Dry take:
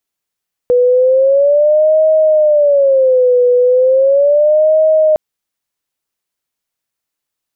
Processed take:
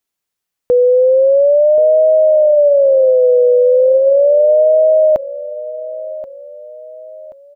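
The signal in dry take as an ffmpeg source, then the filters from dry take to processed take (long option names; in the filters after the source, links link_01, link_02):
-f lavfi -i "aevalsrc='0.473*sin(2*PI*(560.5*t-68.5/(2*PI*0.36)*sin(2*PI*0.36*t)))':duration=4.46:sample_rate=44100"
-af "aecho=1:1:1080|2160|3240:0.168|0.0655|0.0255"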